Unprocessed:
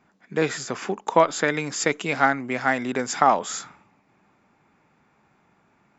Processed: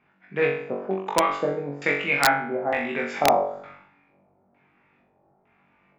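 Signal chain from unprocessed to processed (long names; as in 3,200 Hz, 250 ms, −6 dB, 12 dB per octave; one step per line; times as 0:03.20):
auto-filter low-pass square 1.1 Hz 630–2,500 Hz
flutter between parallel walls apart 3.6 metres, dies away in 0.58 s
wrap-around overflow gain 2 dB
level −6 dB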